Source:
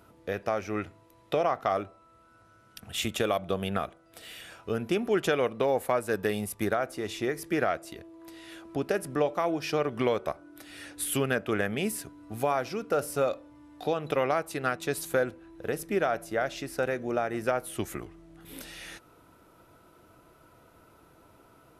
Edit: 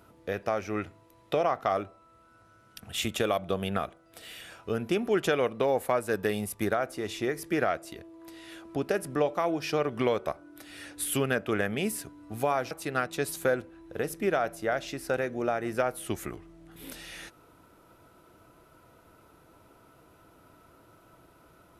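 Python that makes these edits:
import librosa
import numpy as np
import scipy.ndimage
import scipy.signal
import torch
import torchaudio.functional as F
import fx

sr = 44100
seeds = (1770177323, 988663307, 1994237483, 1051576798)

y = fx.edit(x, sr, fx.cut(start_s=12.71, length_s=1.69), tone=tone)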